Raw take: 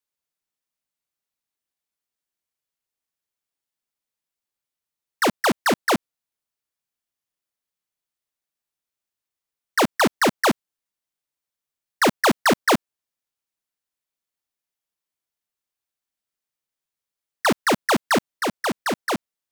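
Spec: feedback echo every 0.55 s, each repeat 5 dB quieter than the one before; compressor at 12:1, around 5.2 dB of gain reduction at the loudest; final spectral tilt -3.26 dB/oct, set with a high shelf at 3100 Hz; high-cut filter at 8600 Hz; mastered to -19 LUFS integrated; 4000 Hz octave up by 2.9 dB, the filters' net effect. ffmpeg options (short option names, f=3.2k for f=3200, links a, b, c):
-af "lowpass=8.6k,highshelf=f=3.1k:g=-5.5,equalizer=f=4k:t=o:g=8,acompressor=threshold=-21dB:ratio=12,aecho=1:1:550|1100|1650|2200|2750|3300|3850:0.562|0.315|0.176|0.0988|0.0553|0.031|0.0173,volume=8dB"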